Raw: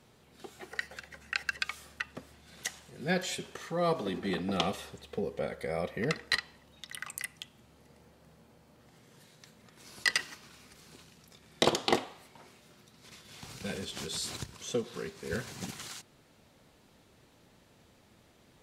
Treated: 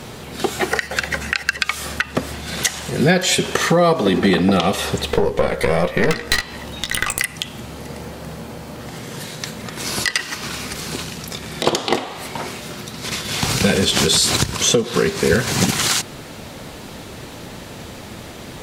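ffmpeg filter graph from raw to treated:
-filter_complex "[0:a]asettb=1/sr,asplit=3[s0][s1][s2];[s0]atrim=end=5.104[s3];[s1]atrim=start=5.1:end=7.2,asetpts=PTS-STARTPTS,afade=t=in:d=0.004:c=qsin,afade=t=out:st=2.096:d=0.004:c=qsin,aeval=exprs='(tanh(35.5*val(0)+0.75)-tanh(0.75))/35.5':c=same,asplit=2[s4][s5];[s5]adelay=17,volume=0.398[s6];[s4][s6]amix=inputs=2:normalize=0,atrim=end_sample=92610,acompressor=mode=upward:threshold=0.00282:ratio=2.5:attack=3.2:release=140:knee=2.83:detection=peak[s7];[s2]atrim=start=7.196[s8];[s3][s7]acrossfade=d=0.004:c1=hsin:c2=qsin[s9];[s9][s8]acrossfade=d=0.004:c1=qsin:c2=hsin,acompressor=threshold=0.01:ratio=6,alimiter=level_in=26.6:limit=0.891:release=50:level=0:latency=1,volume=0.891"

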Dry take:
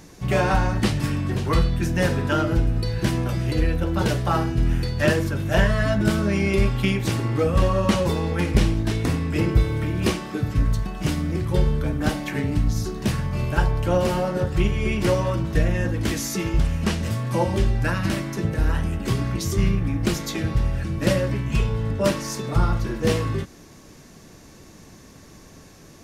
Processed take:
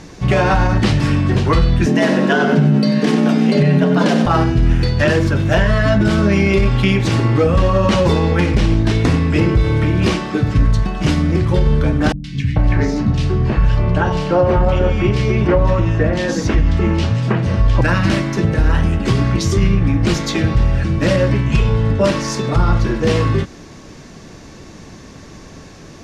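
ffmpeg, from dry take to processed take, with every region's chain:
-filter_complex "[0:a]asettb=1/sr,asplit=3[s0][s1][s2];[s0]atrim=end=1.864[s3];[s1]atrim=start=1.86:end=4.26,asetpts=PTS-STARTPTS,afade=t=in:d=0.004:c=qsin,afade=t=out:st=2.396:d=0.004:c=qsin,afreqshift=100,aecho=1:1:94|188|282|376:0.335|0.131|0.0509|0.0199,atrim=end_sample=105840[s4];[s2]atrim=start=4.256[s5];[s3][s4]acrossfade=d=0.004:c1=hsin:c2=qsin[s6];[s6][s5]acrossfade=d=0.004:c1=qsin:c2=hsin,asettb=1/sr,asplit=3[s7][s8][s9];[s7]atrim=end=12.124[s10];[s8]atrim=start=12.12:end=17.81,asetpts=PTS-STARTPTS,afade=t=in:d=0.004:c=qsin,afade=t=out:st=5.686:d=0.004:c=qsin,aemphasis=mode=reproduction:type=50fm,acrossover=split=200|2400[s11][s12][s13];[s13]adelay=120[s14];[s12]adelay=440[s15];[s11][s15][s14]amix=inputs=3:normalize=0,atrim=end_sample=250929[s16];[s9]atrim=start=17.806[s17];[s10][s16]acrossfade=d=0.004:c1=hsin:c2=qsin[s18];[s18][s17]acrossfade=d=0.004:c1=qsin:c2=hsin,lowpass=5900,alimiter=level_in=4.73:limit=0.891:release=50:level=0:latency=1,volume=0.631"

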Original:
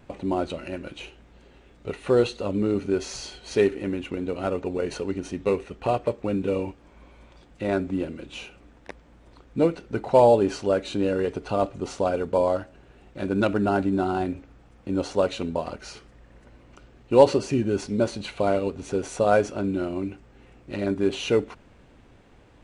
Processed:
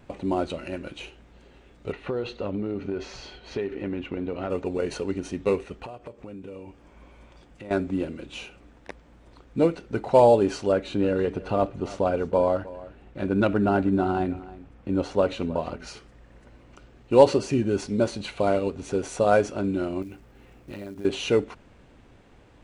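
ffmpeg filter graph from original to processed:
-filter_complex "[0:a]asettb=1/sr,asplit=3[s0][s1][s2];[s0]atrim=end=1.924[s3];[s1]atrim=start=1.92:end=4.5,asetpts=PTS-STARTPTS,afade=t=in:d=0.004:c=qsin,afade=t=out:st=2.576:d=0.004:c=qsin,lowpass=3300,acompressor=threshold=0.0631:ratio=12:attack=3.2:release=140:knee=1:detection=peak[s4];[s2]atrim=start=4.496[s5];[s3][s4]acrossfade=d=0.004:c1=hsin:c2=qsin[s6];[s6][s5]acrossfade=d=0.004:c1=qsin:c2=hsin,asettb=1/sr,asplit=3[s7][s8][s9];[s7]atrim=end=5.854[s10];[s8]atrim=start=5.85:end=7.71,asetpts=PTS-STARTPTS,afade=t=in:d=0.004:c=qsin,afade=t=out:st=1.856:d=0.004:c=qsin,equalizer=f=4000:w=7.7:g=-5.5,acompressor=threshold=0.0112:ratio=4:attack=3.2:release=140:knee=1:detection=peak[s11];[s9]atrim=start=7.706[s12];[s10][s11]acrossfade=d=0.004:c1=hsin:c2=qsin[s13];[s13][s12]acrossfade=d=0.004:c1=qsin:c2=hsin,asettb=1/sr,asplit=3[s14][s15][s16];[s14]atrim=end=10.724[s17];[s15]atrim=start=10.72:end=15.87,asetpts=PTS-STARTPTS,afade=t=in:d=0.004:c=qsin,afade=t=out:st=5.146:d=0.004:c=qsin,bass=f=250:g=2,treble=f=4000:g=-8,aecho=1:1:315:0.126,atrim=end_sample=227115[s18];[s16]atrim=start=15.866[s19];[s17][s18]acrossfade=d=0.004:c1=hsin:c2=qsin[s20];[s20][s19]acrossfade=d=0.004:c1=qsin:c2=hsin,asettb=1/sr,asplit=3[s21][s22][s23];[s21]atrim=end=20.024[s24];[s22]atrim=start=20.02:end=21.05,asetpts=PTS-STARTPTS,afade=t=in:d=0.004:c=qsin,afade=t=out:st=1.026:d=0.004:c=qsin,acompressor=threshold=0.0224:ratio=12:attack=3.2:release=140:knee=1:detection=peak,acrusher=bits=6:mode=log:mix=0:aa=0.000001[s25];[s23]atrim=start=21.046[s26];[s24][s25]acrossfade=d=0.004:c1=hsin:c2=qsin[s27];[s27][s26]acrossfade=d=0.004:c1=qsin:c2=hsin"

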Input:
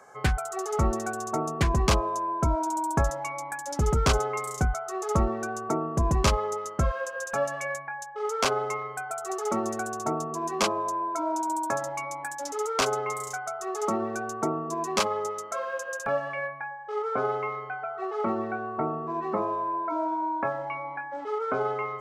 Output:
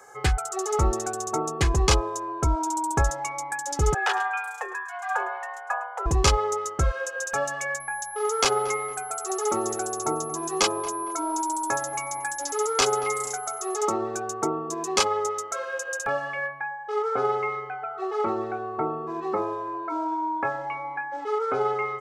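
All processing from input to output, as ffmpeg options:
-filter_complex "[0:a]asettb=1/sr,asplit=3[s0][s1][s2];[s0]atrim=end=3.944[s3];[s1]atrim=start=3.94:end=6.06,asetpts=PTS-STARTPTS,afade=t=in:d=0.004:c=qsin,afade=t=out:st=2.116:d=0.004:c=qsin,acrossover=split=310 2800:gain=0.0891 1 0.112[s4][s5][s6];[s4][s5][s6]amix=inputs=3:normalize=0,afreqshift=330,aecho=1:1:106:0.178,atrim=end_sample=93492[s7];[s2]atrim=start=6.056[s8];[s3][s7]acrossfade=d=0.004:c1=hsin:c2=qsin[s9];[s9][s8]acrossfade=d=0.004:c1=qsin:c2=hsin,asettb=1/sr,asplit=3[s10][s11][s12];[s10]atrim=end=7.804[s13];[s11]atrim=start=7.8:end=13.76,asetpts=PTS-STARTPTS,afade=t=in:d=0.004:c=qsin,afade=t=out:st=5.956:d=0.004:c=qsin,aeval=exprs='val(0)+0.00631*sin(2*PI*11000*n/s)':c=same,asplit=2[s14][s15];[s15]adelay=229,lowpass=f=1900:p=1,volume=0.178,asplit=2[s16][s17];[s17]adelay=229,lowpass=f=1900:p=1,volume=0.43,asplit=2[s18][s19];[s19]adelay=229,lowpass=f=1900:p=1,volume=0.43,asplit=2[s20][s21];[s21]adelay=229,lowpass=f=1900:p=1,volume=0.43[s22];[s14][s16][s18][s20][s22]amix=inputs=5:normalize=0,atrim=end_sample=262836[s23];[s12]atrim=start=13.756[s24];[s13][s23]acrossfade=d=0.004:c1=hsin:c2=qsin[s25];[s25][s24]acrossfade=d=0.004:c1=qsin:c2=hsin,acrossover=split=9400[s26][s27];[s27]acompressor=threshold=0.00112:ratio=4:attack=1:release=60[s28];[s26][s28]amix=inputs=2:normalize=0,highshelf=f=4300:g=9,aecho=1:1:2.4:0.54"

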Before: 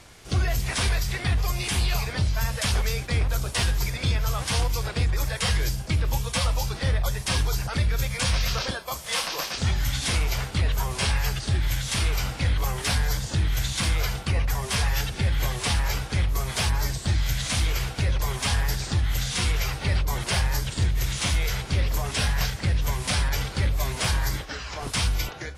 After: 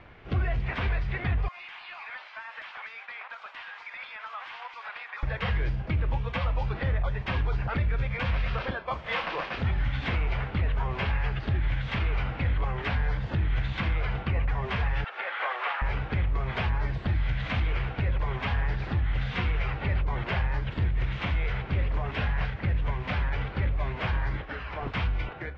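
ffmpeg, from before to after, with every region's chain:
-filter_complex "[0:a]asettb=1/sr,asplit=3[s0][s1][s2];[s0]atrim=end=1.484[s3];[s1]atrim=start=1.48:end=5.23,asetpts=PTS-STARTPTS,afade=t=in:d=0.004:c=qsin,afade=t=out:st=3.746:d=0.004:c=qsin,highpass=f=860:w=0.5412,highpass=f=860:w=1.3066,acompressor=threshold=0.0224:ratio=10:attack=3.2:release=140:knee=1:detection=peak,asoftclip=type=hard:threshold=0.0266[s4];[s2]atrim=start=5.226[s5];[s3][s4]acrossfade=d=0.004:c1=hsin:c2=qsin[s6];[s6][s5]acrossfade=d=0.004:c1=qsin:c2=hsin,asettb=1/sr,asplit=3[s7][s8][s9];[s7]atrim=end=15.044[s10];[s8]atrim=start=15.04:end=15.82,asetpts=PTS-STARTPTS,afade=t=in:d=0.004:c=qsin,afade=t=out:st=0.776:d=0.004:c=qsin,acrossover=split=3500[s11][s12];[s12]acompressor=threshold=0.00708:ratio=4:attack=1:release=60[s13];[s11][s13]amix=inputs=2:normalize=0,highpass=f=570:w=0.5412,highpass=f=570:w=1.3066,equalizer=f=1300:t=o:w=0.41:g=7[s14];[s9]atrim=start=15.816[s15];[s10][s14]acrossfade=d=0.004:c1=hsin:c2=qsin[s16];[s16][s15]acrossfade=d=0.004:c1=qsin:c2=hsin,lowpass=f=2600:w=0.5412,lowpass=f=2600:w=1.3066,dynaudnorm=f=900:g=13:m=1.78,alimiter=limit=0.106:level=0:latency=1:release=428"

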